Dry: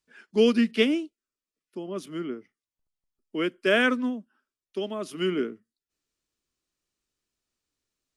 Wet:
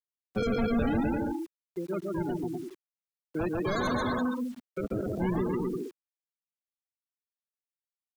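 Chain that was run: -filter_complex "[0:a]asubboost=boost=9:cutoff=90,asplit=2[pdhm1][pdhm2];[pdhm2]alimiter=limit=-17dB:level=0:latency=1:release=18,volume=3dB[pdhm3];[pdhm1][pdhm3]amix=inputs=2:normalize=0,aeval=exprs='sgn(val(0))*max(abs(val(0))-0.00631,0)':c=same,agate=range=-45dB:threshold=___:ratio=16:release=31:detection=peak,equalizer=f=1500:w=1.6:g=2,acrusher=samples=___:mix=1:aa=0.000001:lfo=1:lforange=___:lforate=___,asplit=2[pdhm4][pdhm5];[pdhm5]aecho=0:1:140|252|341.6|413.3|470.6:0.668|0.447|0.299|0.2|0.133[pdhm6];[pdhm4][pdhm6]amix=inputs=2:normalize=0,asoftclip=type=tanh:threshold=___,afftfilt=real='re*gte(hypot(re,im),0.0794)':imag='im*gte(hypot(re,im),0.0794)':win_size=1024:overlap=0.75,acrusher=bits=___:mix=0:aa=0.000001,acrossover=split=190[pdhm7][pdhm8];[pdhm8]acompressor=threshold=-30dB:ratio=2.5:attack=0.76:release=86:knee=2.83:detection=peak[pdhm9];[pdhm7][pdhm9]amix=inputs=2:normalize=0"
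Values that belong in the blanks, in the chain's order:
-36dB, 32, 32, 0.47, -18dB, 8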